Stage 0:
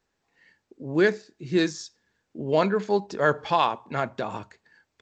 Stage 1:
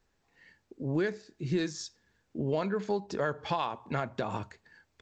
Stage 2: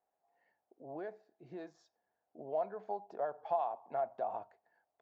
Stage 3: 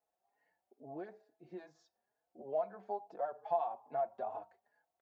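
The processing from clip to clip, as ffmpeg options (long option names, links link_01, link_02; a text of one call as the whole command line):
ffmpeg -i in.wav -af "acompressor=threshold=-29dB:ratio=4,lowshelf=frequency=96:gain=11" out.wav
ffmpeg -i in.wav -af "bandpass=frequency=710:width_type=q:width=7.7:csg=0,volume=5.5dB" out.wav
ffmpeg -i in.wav -filter_complex "[0:a]asplit=2[link_01][link_02];[link_02]adelay=4.3,afreqshift=2.3[link_03];[link_01][link_03]amix=inputs=2:normalize=1,volume=1dB" out.wav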